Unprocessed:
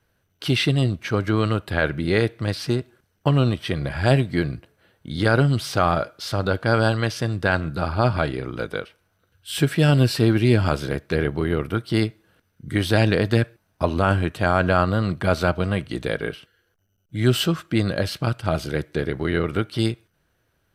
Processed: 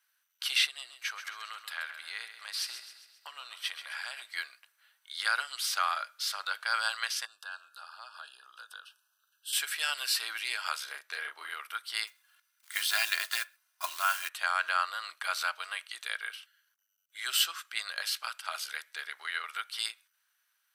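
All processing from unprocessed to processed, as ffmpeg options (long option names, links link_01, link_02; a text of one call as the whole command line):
ffmpeg -i in.wav -filter_complex "[0:a]asettb=1/sr,asplit=3[link_01][link_02][link_03];[link_01]atrim=end=0.664[link_04];[link_02]atrim=start=0.66:end=4.22,asetpts=PTS-STARTPTS,afade=type=in:duration=0.004:curve=qsin,afade=type=out:start_time=3.556:duration=0.004:curve=qsin,acompressor=threshold=-22dB:ratio=10:attack=3.2:release=140:knee=1:detection=peak,aecho=1:1:133|266|399|532|665|798:0.299|0.152|0.0776|0.0396|0.0202|0.0103,atrim=end_sample=156996[link_05];[link_03]atrim=start=4.216[link_06];[link_04][link_05]acrossfade=duration=0.004:curve1=hsin:curve2=qsin[link_07];[link_07][link_06]acrossfade=duration=0.004:curve1=qsin:curve2=hsin,asettb=1/sr,asplit=3[link_08][link_09][link_10];[link_08]atrim=end=7.254[link_11];[link_09]atrim=start=7.25:end=9.53,asetpts=PTS-STARTPTS,afade=type=in:duration=0.004:curve=qsin,afade=type=out:start_time=2.276:duration=0.004:curve=qsin,asuperstop=centerf=2100:order=20:qfactor=2.9,acompressor=threshold=-35dB:ratio=2.5:attack=3.2:release=140:knee=1:detection=peak[link_12];[link_10]atrim=start=9.526[link_13];[link_11][link_12]acrossfade=duration=0.004:curve1=hsin:curve2=qsin[link_14];[link_14][link_13]acrossfade=duration=0.004:curve1=qsin:curve2=hsin,asettb=1/sr,asplit=3[link_15][link_16][link_17];[link_15]atrim=end=10.844[link_18];[link_16]atrim=start=10.84:end=11.5,asetpts=PTS-STARTPTS,afade=type=in:duration=0.004:curve=qsin,afade=type=out:start_time=0.656:duration=0.004:curve=qsin,tiltshelf=frequency=710:gain=4.5,asplit=2[link_19][link_20];[link_20]adelay=34,volume=-4dB[link_21];[link_19][link_21]amix=inputs=2:normalize=0,atrim=end_sample=29106[link_22];[link_17]atrim=start=11.496[link_23];[link_18][link_22]acrossfade=duration=0.004:curve1=hsin:curve2=qsin[link_24];[link_24][link_23]acrossfade=duration=0.004:curve1=qsin:curve2=hsin,asettb=1/sr,asplit=3[link_25][link_26][link_27];[link_25]atrim=end=12.074[link_28];[link_26]atrim=start=12.07:end=14.29,asetpts=PTS-STARTPTS,afade=type=in:duration=0.004:curve=qsin,afade=type=out:start_time=2.216:duration=0.004:curve=qsin,equalizer=frequency=490:width=7.8:gain=-13,aecho=1:1:2.9:0.53,atrim=end_sample=97902,acrusher=bits=5:mode=log:mix=0:aa=0.000001[link_29];[link_27]atrim=start=14.286[link_30];[link_28][link_29]acrossfade=duration=0.004:curve1=hsin:curve2=qsin[link_31];[link_31][link_30]acrossfade=duration=0.004:curve1=qsin:curve2=hsin,highpass=frequency=1100:width=0.5412,highpass=frequency=1100:width=1.3066,highshelf=frequency=4400:gain=9,volume=-5.5dB" out.wav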